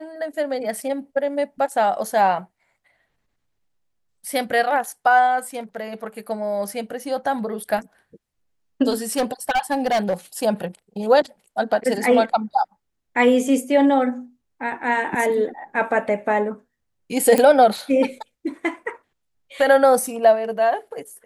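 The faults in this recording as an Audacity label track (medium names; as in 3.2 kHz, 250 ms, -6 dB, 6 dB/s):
9.170000	10.140000	clipped -16 dBFS
17.380000	17.380000	pop -6 dBFS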